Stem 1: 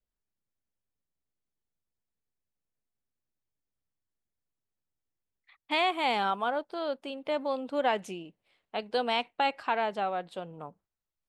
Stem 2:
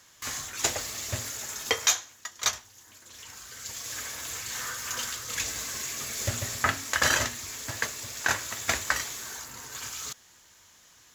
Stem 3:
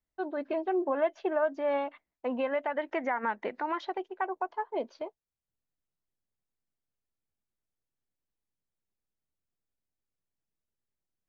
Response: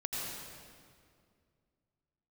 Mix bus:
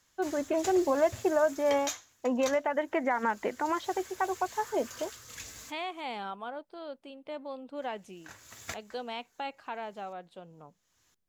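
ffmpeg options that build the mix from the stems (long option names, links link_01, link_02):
-filter_complex "[0:a]volume=-10.5dB,asplit=2[link_01][link_02];[1:a]volume=-13dB,asplit=3[link_03][link_04][link_05];[link_03]atrim=end=6.01,asetpts=PTS-STARTPTS,afade=type=out:start_time=6.006:duration=0.004:curve=hsin[link_06];[link_04]atrim=start=6.01:end=7.78,asetpts=PTS-STARTPTS,volume=0[link_07];[link_05]atrim=start=7.78,asetpts=PTS-STARTPTS,afade=type=in:duration=0.004:curve=hsin[link_08];[link_06][link_07][link_08]concat=n=3:v=0:a=1[link_09];[2:a]volume=1dB[link_10];[link_02]apad=whole_len=491468[link_11];[link_09][link_11]sidechaincompress=threshold=-60dB:ratio=6:attack=5:release=349[link_12];[link_01][link_12][link_10]amix=inputs=3:normalize=0,lowshelf=frequency=380:gain=4.5"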